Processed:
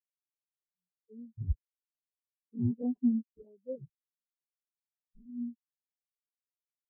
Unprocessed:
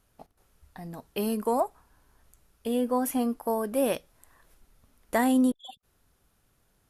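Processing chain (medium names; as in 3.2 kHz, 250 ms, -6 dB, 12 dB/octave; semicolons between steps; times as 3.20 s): Doppler pass-by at 2.40 s, 25 m/s, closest 22 m; decimation with a swept rate 41×, swing 160% 1.6 Hz; spectral contrast expander 4:1; trim -1.5 dB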